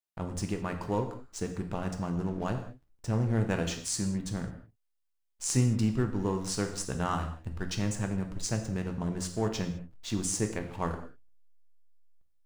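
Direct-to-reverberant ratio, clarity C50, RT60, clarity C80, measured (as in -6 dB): 4.5 dB, 9.0 dB, no single decay rate, 11.0 dB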